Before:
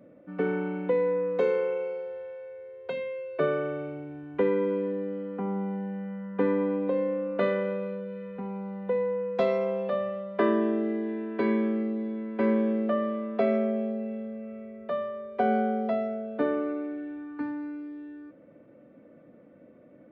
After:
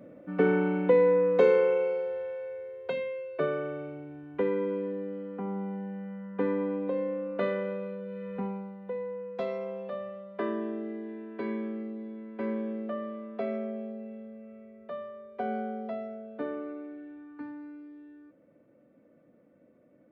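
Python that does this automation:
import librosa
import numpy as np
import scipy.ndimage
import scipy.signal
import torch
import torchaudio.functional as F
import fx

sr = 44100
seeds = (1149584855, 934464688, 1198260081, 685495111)

y = fx.gain(x, sr, db=fx.line((2.54, 4.0), (3.49, -3.5), (7.98, -3.5), (8.42, 3.0), (8.77, -8.0)))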